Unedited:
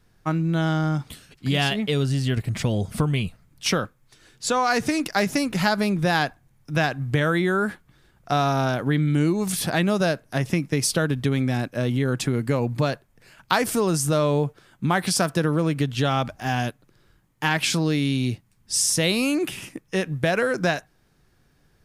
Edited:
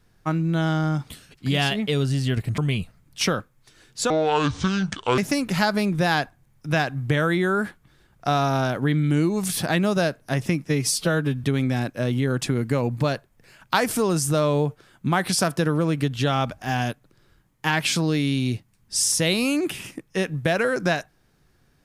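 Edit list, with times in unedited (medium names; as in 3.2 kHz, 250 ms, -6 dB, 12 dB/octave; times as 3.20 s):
2.58–3.03 s: delete
4.55–5.22 s: speed 62%
10.70–11.22 s: stretch 1.5×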